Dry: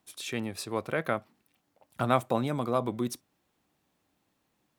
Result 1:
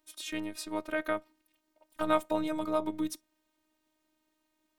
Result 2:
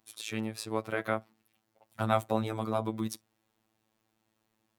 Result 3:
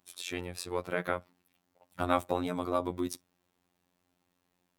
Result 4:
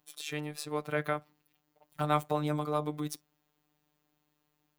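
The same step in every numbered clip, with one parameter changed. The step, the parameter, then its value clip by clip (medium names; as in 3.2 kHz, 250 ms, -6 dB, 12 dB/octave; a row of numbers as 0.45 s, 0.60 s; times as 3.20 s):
robot voice, frequency: 310 Hz, 110 Hz, 89 Hz, 150 Hz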